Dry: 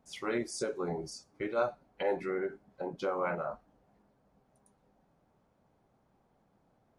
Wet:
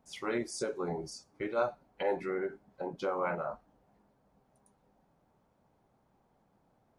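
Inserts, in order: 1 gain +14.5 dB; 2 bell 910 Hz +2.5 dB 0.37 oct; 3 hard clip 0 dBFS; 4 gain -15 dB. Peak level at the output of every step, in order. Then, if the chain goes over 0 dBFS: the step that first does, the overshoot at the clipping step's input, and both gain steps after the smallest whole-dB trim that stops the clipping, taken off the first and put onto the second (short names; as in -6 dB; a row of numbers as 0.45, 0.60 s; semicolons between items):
-3.5, -3.5, -3.5, -18.5 dBFS; no overload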